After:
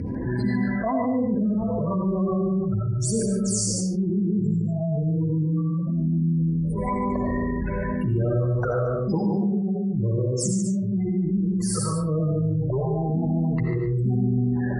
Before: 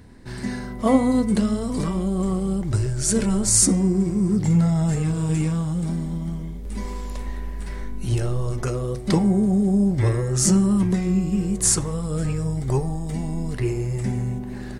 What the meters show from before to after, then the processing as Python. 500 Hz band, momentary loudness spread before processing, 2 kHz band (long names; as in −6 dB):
+0.5 dB, 14 LU, −0.5 dB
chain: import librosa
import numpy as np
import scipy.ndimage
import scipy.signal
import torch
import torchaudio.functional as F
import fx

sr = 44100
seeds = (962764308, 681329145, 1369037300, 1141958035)

p1 = scipy.signal.sosfilt(scipy.signal.butter(2, 82.0, 'highpass', fs=sr, output='sos'), x)
p2 = fx.spec_gate(p1, sr, threshold_db=-20, keep='strong')
p3 = scipy.signal.sosfilt(scipy.signal.butter(2, 8400.0, 'lowpass', fs=sr, output='sos'), p2)
p4 = fx.hum_notches(p3, sr, base_hz=60, count=7)
p5 = fx.dynamic_eq(p4, sr, hz=1000.0, q=0.71, threshold_db=-42.0, ratio=4.0, max_db=4)
p6 = fx.rider(p5, sr, range_db=10, speed_s=0.5)
p7 = fx.phaser_stages(p6, sr, stages=8, low_hz=250.0, high_hz=4400.0, hz=1.0, feedback_pct=25)
p8 = p7 + fx.echo_single(p7, sr, ms=146, db=-7.5, dry=0)
p9 = fx.rev_freeverb(p8, sr, rt60_s=0.48, hf_ratio=0.6, predelay_ms=45, drr_db=0.5)
p10 = fx.env_flatten(p9, sr, amount_pct=70)
y = p10 * 10.0 ** (-8.5 / 20.0)